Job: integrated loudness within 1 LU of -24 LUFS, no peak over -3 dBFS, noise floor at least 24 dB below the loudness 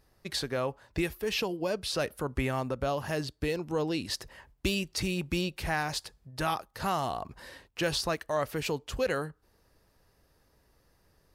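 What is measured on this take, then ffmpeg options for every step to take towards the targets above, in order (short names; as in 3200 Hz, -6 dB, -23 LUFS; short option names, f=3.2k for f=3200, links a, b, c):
loudness -32.5 LUFS; peak -15.0 dBFS; loudness target -24.0 LUFS
-> -af "volume=8.5dB"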